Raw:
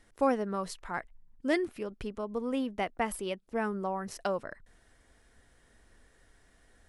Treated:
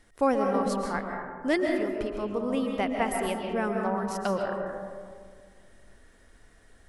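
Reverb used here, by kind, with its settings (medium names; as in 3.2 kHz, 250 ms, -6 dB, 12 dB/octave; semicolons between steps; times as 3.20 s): algorithmic reverb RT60 2 s, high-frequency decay 0.3×, pre-delay 95 ms, DRR 1.5 dB; trim +2.5 dB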